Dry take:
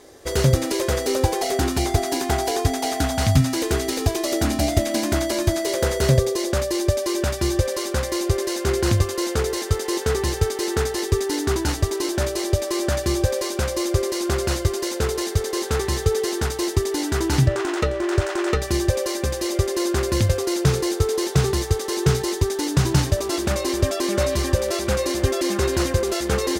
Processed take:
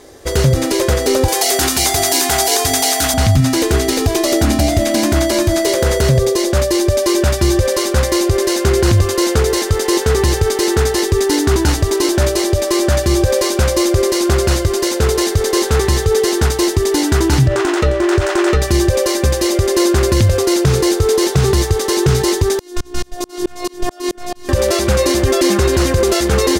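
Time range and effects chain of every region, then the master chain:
0:01.28–0:03.14: spectral tilt +3 dB per octave + mains-hum notches 50/100/150/200/250/300/350 Hz
0:22.59–0:24.49: phases set to zero 357 Hz + tremolo with a ramp in dB swelling 4.6 Hz, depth 36 dB
whole clip: low-shelf EQ 110 Hz +5 dB; automatic gain control; boost into a limiter +9 dB; level −3 dB

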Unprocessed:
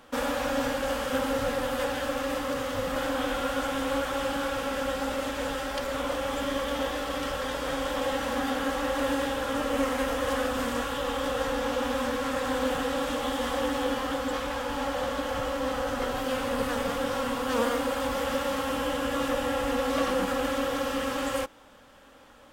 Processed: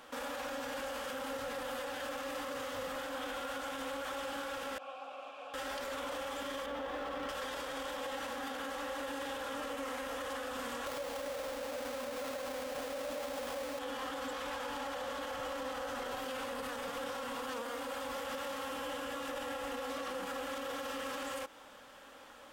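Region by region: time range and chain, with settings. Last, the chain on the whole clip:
0:04.78–0:05.54: formant filter a + parametric band 660 Hz −4.5 dB 2.5 octaves
0:06.66–0:07.29: running median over 5 samples + high-shelf EQ 2,500 Hz −11 dB
0:10.86–0:13.79: each half-wave held at its own peak + parametric band 590 Hz +12.5 dB 0.24 octaves
whole clip: low-shelf EQ 250 Hz −12 dB; downward compressor, threshold −32 dBFS; brickwall limiter −32.5 dBFS; level +1 dB

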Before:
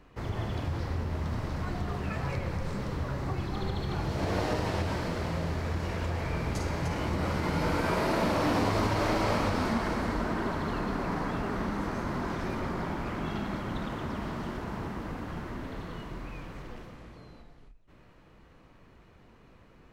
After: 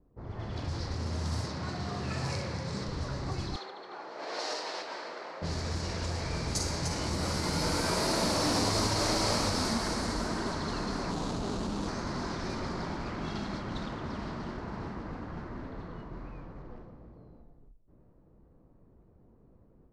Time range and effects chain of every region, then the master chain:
0:00.94–0:02.85: high-pass filter 76 Hz 24 dB per octave + flutter between parallel walls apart 10.6 metres, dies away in 0.68 s
0:03.56–0:05.42: Bessel high-pass filter 570 Hz, order 4 + high-shelf EQ 7,800 Hz −5 dB
0:11.11–0:11.88: running median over 25 samples + envelope flattener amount 70%
whole clip: flat-topped bell 6,700 Hz +14.5 dB; automatic gain control gain up to 5 dB; low-pass that shuts in the quiet parts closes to 490 Hz, open at −20 dBFS; level −7.5 dB

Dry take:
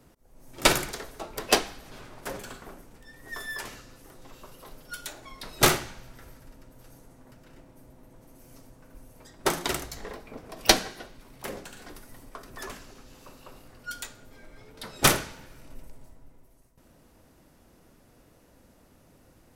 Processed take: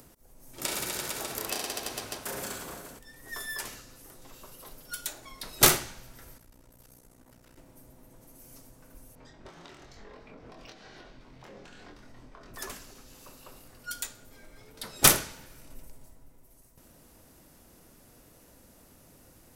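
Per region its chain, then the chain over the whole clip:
0:00.61–0:02.99: reverse bouncing-ball delay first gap 30 ms, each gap 1.25×, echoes 8, each echo −2 dB + downward compressor, threshold −30 dBFS + high-pass filter 51 Hz
0:06.38–0:07.58: tube saturation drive 43 dB, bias 0.4 + amplitude modulation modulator 61 Hz, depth 70%
0:09.15–0:12.54: downward compressor 16 to 1, threshold −42 dBFS + high-frequency loss of the air 170 metres + double-tracking delay 24 ms −3.5 dB
whole clip: high-shelf EQ 5,500 Hz +10.5 dB; upward compression, threshold −47 dBFS; level −3 dB

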